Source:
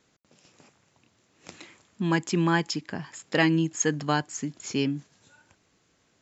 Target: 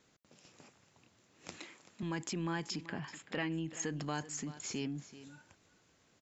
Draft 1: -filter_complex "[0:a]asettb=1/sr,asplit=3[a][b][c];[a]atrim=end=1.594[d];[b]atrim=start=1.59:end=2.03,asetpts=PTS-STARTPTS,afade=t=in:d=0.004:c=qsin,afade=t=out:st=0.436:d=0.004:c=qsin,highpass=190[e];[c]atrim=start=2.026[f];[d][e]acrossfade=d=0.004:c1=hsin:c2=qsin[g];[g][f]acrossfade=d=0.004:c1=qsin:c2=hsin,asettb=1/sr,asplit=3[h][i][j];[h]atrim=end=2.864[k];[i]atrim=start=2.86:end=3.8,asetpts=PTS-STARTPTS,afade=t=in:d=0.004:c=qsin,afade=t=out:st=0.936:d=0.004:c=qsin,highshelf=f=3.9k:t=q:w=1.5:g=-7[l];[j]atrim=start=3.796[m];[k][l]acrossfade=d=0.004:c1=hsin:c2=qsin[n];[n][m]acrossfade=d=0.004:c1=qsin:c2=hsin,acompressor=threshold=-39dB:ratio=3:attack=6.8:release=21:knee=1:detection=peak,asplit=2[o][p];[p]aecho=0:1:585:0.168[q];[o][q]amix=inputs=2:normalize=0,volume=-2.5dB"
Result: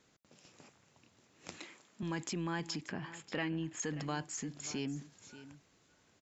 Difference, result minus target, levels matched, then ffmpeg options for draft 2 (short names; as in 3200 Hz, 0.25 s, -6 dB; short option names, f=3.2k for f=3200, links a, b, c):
echo 0.202 s late
-filter_complex "[0:a]asettb=1/sr,asplit=3[a][b][c];[a]atrim=end=1.594[d];[b]atrim=start=1.59:end=2.03,asetpts=PTS-STARTPTS,afade=t=in:d=0.004:c=qsin,afade=t=out:st=0.436:d=0.004:c=qsin,highpass=190[e];[c]atrim=start=2.026[f];[d][e]acrossfade=d=0.004:c1=hsin:c2=qsin[g];[g][f]acrossfade=d=0.004:c1=qsin:c2=hsin,asettb=1/sr,asplit=3[h][i][j];[h]atrim=end=2.864[k];[i]atrim=start=2.86:end=3.8,asetpts=PTS-STARTPTS,afade=t=in:d=0.004:c=qsin,afade=t=out:st=0.936:d=0.004:c=qsin,highshelf=f=3.9k:t=q:w=1.5:g=-7[l];[j]atrim=start=3.796[m];[k][l]acrossfade=d=0.004:c1=hsin:c2=qsin[n];[n][m]acrossfade=d=0.004:c1=qsin:c2=hsin,acompressor=threshold=-39dB:ratio=3:attack=6.8:release=21:knee=1:detection=peak,asplit=2[o][p];[p]aecho=0:1:383:0.168[q];[o][q]amix=inputs=2:normalize=0,volume=-2.5dB"